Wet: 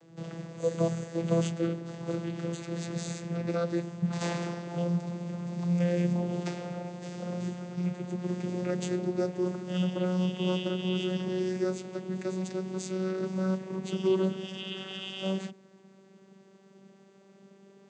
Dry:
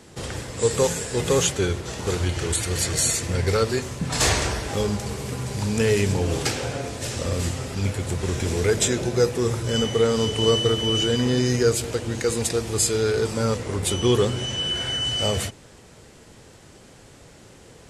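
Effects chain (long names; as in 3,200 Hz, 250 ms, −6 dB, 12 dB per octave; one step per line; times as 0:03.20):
vocoder with a gliding carrier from E3, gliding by +3 semitones
level −6.5 dB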